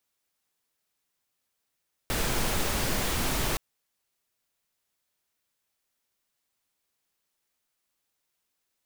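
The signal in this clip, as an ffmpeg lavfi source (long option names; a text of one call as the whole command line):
ffmpeg -f lavfi -i "anoisesrc=color=pink:amplitude=0.216:duration=1.47:sample_rate=44100:seed=1" out.wav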